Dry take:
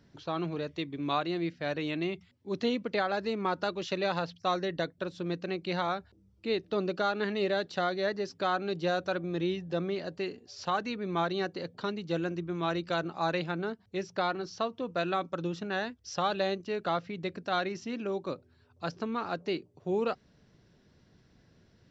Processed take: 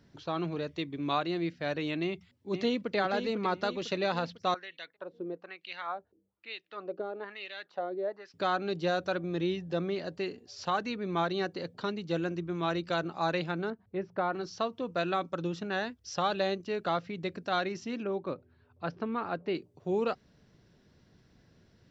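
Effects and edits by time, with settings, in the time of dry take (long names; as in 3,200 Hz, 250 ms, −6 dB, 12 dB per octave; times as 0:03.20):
0:02.03–0:02.96: delay throw 500 ms, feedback 50%, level −8 dB
0:04.54–0:08.34: LFO wah 1.1 Hz 380–2,900 Hz, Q 2.2
0:13.70–0:14.33: low-pass filter 1,600 Hz
0:18.03–0:19.55: low-pass filter 2,700 Hz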